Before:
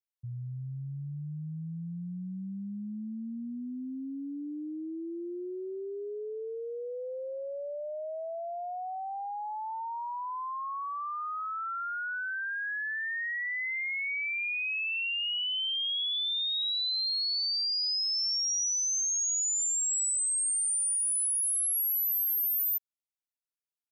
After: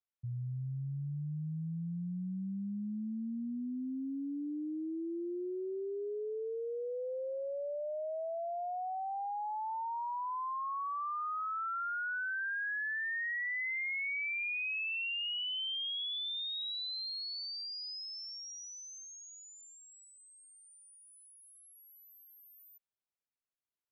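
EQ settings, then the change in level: air absorption 290 m; 0.0 dB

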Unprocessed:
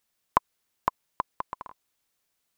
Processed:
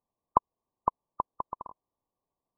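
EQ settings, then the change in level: brick-wall FIR low-pass 1200 Hz; 0.0 dB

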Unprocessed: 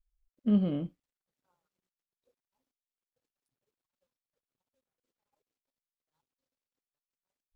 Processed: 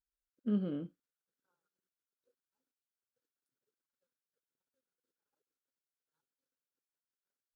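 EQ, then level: HPF 430 Hz 6 dB/oct; band shelf 860 Hz -11 dB 1.3 oct; resonant high shelf 1700 Hz -6 dB, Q 3; 0.0 dB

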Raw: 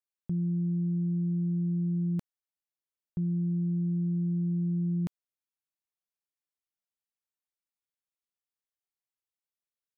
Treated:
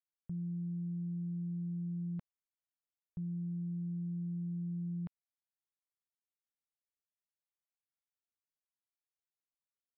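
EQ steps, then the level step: air absorption 480 m; bell 310 Hz -11.5 dB 0.97 oct; -6.0 dB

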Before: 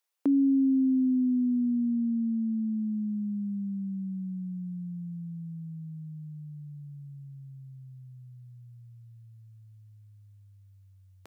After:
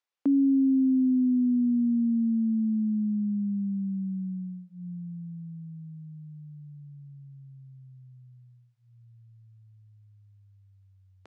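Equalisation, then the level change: dynamic EQ 210 Hz, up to +6 dB, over -41 dBFS, Q 1.7; air absorption 100 m; notches 60/120/180 Hz; -2.0 dB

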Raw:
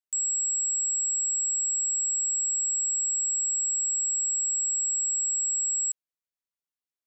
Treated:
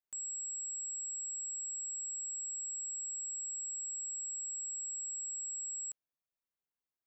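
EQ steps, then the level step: bell 7300 Hz -13.5 dB 2.4 oct; 0.0 dB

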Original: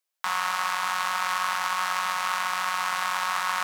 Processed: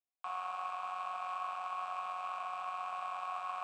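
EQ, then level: vowel filter a; low shelf 410 Hz +10 dB; bell 8000 Hz +12.5 dB 0.23 oct; -5.0 dB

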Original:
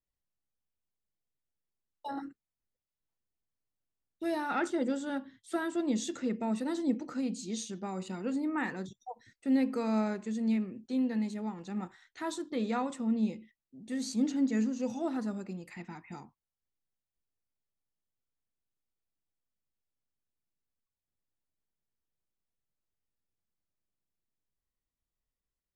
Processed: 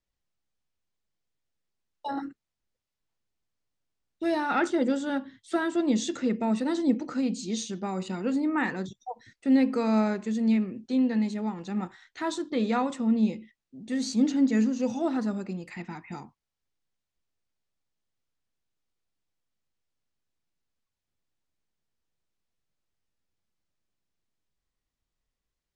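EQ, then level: air absorption 100 m; high shelf 4900 Hz +8.5 dB; +6.0 dB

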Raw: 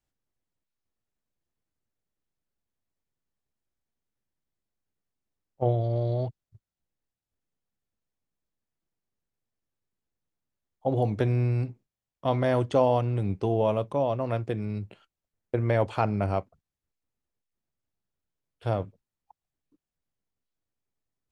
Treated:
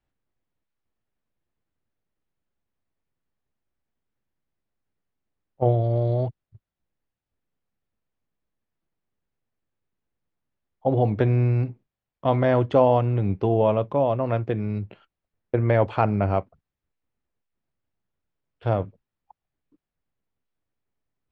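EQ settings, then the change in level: LPF 2900 Hz 12 dB/oct; +4.5 dB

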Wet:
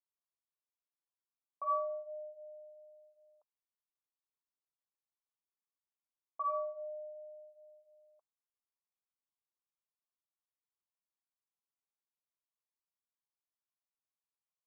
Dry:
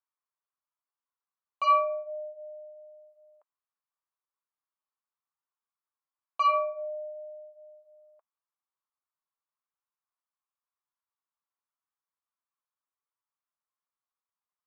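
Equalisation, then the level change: Gaussian blur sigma 8.7 samples; low shelf 440 Hz -10.5 dB; -1.5 dB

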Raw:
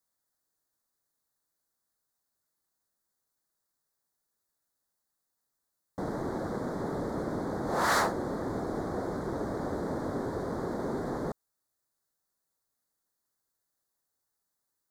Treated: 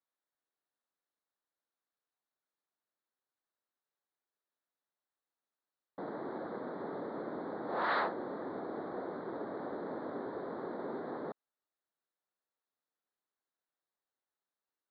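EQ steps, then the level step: HPF 270 Hz 12 dB/oct; steep low-pass 4200 Hz 72 dB/oct; air absorption 69 m; -5.0 dB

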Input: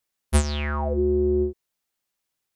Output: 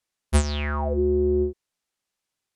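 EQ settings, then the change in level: LPF 9800 Hz 12 dB/oct; 0.0 dB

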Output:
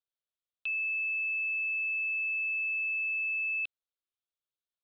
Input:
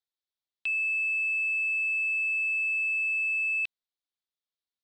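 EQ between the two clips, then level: Bessel low-pass 4200 Hz, order 2; fixed phaser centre 1300 Hz, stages 8; -1.5 dB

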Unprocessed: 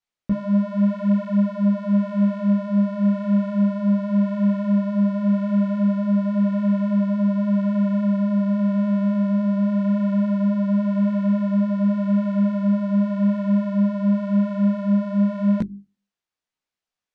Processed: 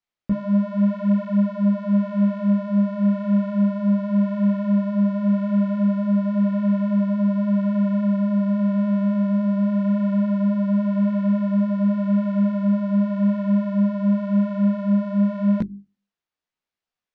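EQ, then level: air absorption 74 m; 0.0 dB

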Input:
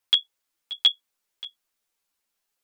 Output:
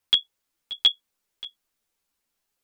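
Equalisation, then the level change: low shelf 340 Hz +8 dB; 0.0 dB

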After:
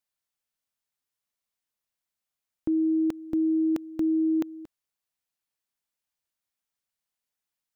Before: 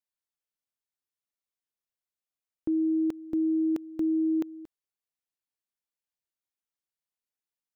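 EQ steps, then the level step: bell 380 Hz -4.5 dB; +5.0 dB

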